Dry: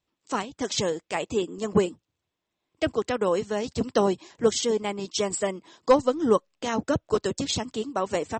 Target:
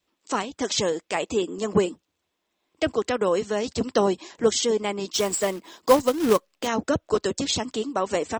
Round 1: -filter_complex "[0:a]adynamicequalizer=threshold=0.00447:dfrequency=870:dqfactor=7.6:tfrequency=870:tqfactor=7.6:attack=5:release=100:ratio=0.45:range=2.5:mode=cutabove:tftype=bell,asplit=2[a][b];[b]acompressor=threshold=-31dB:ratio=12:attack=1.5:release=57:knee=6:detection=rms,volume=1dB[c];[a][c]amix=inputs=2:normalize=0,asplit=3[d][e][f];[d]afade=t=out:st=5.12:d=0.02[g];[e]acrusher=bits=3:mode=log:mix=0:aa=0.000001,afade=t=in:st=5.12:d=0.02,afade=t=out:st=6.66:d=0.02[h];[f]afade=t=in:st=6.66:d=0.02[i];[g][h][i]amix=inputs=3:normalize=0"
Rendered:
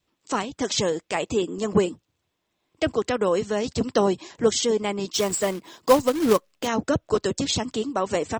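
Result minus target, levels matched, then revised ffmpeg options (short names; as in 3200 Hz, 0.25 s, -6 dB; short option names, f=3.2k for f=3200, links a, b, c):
125 Hz band +2.5 dB
-filter_complex "[0:a]adynamicequalizer=threshold=0.00447:dfrequency=870:dqfactor=7.6:tfrequency=870:tqfactor=7.6:attack=5:release=100:ratio=0.45:range=2.5:mode=cutabove:tftype=bell,asplit=2[a][b];[b]acompressor=threshold=-31dB:ratio=12:attack=1.5:release=57:knee=6:detection=rms,highpass=f=120:w=0.5412,highpass=f=120:w=1.3066,volume=1dB[c];[a][c]amix=inputs=2:normalize=0,asplit=3[d][e][f];[d]afade=t=out:st=5.12:d=0.02[g];[e]acrusher=bits=3:mode=log:mix=0:aa=0.000001,afade=t=in:st=5.12:d=0.02,afade=t=out:st=6.66:d=0.02[h];[f]afade=t=in:st=6.66:d=0.02[i];[g][h][i]amix=inputs=3:normalize=0"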